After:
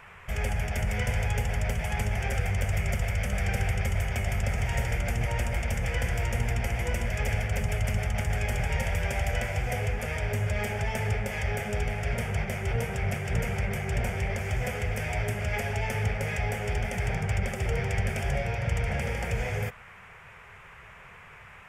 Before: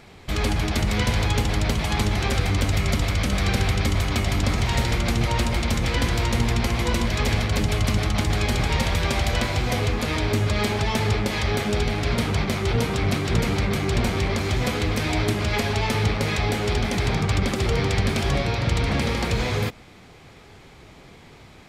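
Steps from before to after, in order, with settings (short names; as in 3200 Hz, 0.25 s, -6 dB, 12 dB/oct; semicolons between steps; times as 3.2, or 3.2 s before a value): fixed phaser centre 1100 Hz, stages 6; band noise 880–2500 Hz -47 dBFS; gain -4 dB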